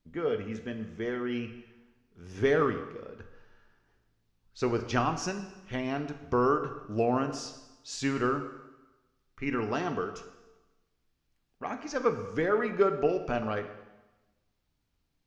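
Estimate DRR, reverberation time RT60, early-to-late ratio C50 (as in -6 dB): 7.5 dB, 1.1 s, 10.0 dB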